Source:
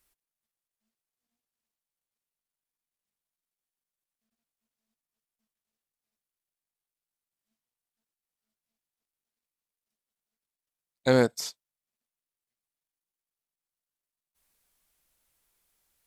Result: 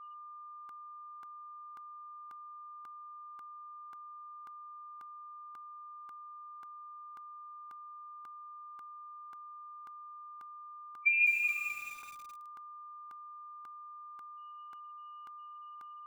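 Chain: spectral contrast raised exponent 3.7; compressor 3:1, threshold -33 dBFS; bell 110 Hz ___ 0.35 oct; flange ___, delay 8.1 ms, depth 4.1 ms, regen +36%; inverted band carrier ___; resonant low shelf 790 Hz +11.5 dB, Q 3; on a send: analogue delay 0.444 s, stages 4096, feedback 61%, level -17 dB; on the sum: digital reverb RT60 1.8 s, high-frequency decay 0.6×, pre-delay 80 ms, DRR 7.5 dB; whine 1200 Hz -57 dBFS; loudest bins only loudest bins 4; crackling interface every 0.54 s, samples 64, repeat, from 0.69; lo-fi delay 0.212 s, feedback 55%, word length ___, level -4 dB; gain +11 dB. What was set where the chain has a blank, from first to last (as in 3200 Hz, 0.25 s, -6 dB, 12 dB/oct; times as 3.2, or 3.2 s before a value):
+11 dB, 0.44 Hz, 2900 Hz, 10-bit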